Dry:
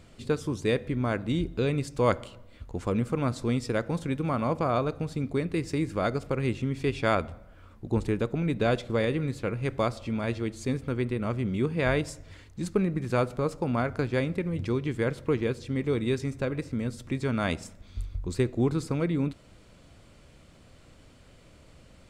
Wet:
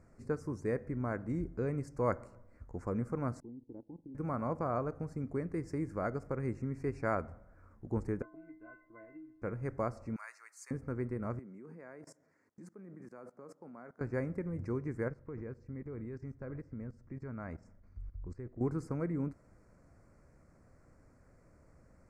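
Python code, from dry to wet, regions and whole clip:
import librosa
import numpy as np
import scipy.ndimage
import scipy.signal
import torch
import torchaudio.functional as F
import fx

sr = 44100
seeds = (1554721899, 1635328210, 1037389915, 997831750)

y = fx.chain(x, sr, fx.formant_cascade(vowel='u'),
    fx.level_steps(step_db=13), at=(3.4, 4.15))
y = fx.chain(y, sr, fx.steep_lowpass(hz=2900.0, slope=36),
    fx.stiff_resonator(f0_hz=310.0, decay_s=0.53, stiffness=0.03),
    fx.band_squash(depth_pct=100), at=(8.22, 9.42))
y = fx.chain(y, sr, fx.highpass(hz=1100.0, slope=24),
    fx.high_shelf(hz=5300.0, db=11.5), at=(10.16, 10.71))
y = fx.chain(y, sr, fx.highpass(hz=180.0, slope=24),
    fx.level_steps(step_db=21), at=(11.39, 14.01))
y = fx.chain(y, sr, fx.lowpass(hz=4800.0, slope=12),
    fx.low_shelf(hz=110.0, db=7.5),
    fx.level_steps(step_db=17), at=(15.08, 18.61))
y = scipy.signal.sosfilt(scipy.signal.cheby1(2, 1.0, [1800.0, 5800.0], 'bandstop', fs=sr, output='sos'), y)
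y = fx.high_shelf(y, sr, hz=4000.0, db=-9.5)
y = y * librosa.db_to_amplitude(-7.0)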